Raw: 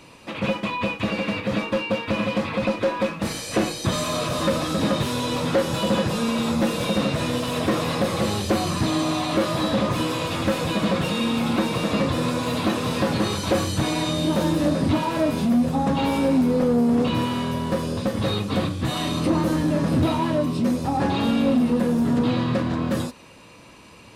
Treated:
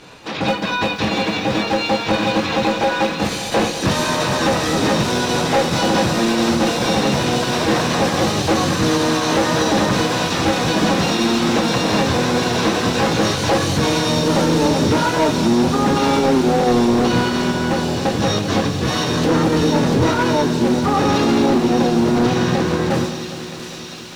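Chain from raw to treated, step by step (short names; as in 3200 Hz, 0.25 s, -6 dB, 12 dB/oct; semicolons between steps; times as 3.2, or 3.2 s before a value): LPF 5700 Hz 12 dB/oct; notches 50/100/150/200/250 Hz; in parallel at -3 dB: pump 137 bpm, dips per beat 2, -21 dB, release 60 ms; on the sum: harmoniser +7 st -2 dB; hard clip -11.5 dBFS, distortion -15 dB; on a send: thin delay 0.689 s, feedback 80%, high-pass 3500 Hz, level -4.5 dB; on the sum: lo-fi delay 0.201 s, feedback 80%, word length 7-bit, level -14.5 dB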